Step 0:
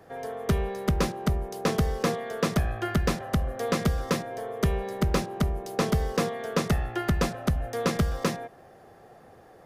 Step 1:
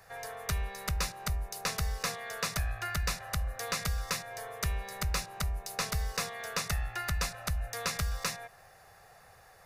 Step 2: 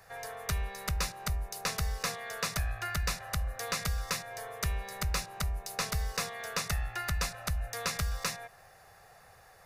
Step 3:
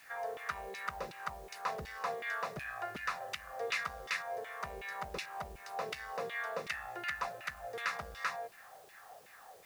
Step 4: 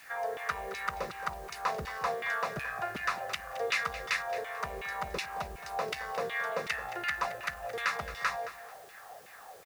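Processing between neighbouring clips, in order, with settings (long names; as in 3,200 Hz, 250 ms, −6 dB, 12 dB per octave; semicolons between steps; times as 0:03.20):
guitar amp tone stack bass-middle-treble 10-0-10; notch filter 3,200 Hz, Q 5.9; in parallel at +2.5 dB: downward compressor, threshold −43 dBFS, peak gain reduction 12.5 dB
no processing that can be heard
soft clipping −27 dBFS, distortion −16 dB; auto-filter band-pass saw down 2.7 Hz 330–2,900 Hz; bit-depth reduction 12 bits, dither triangular; level +8 dB
repeating echo 220 ms, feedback 29%, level −14 dB; level +5 dB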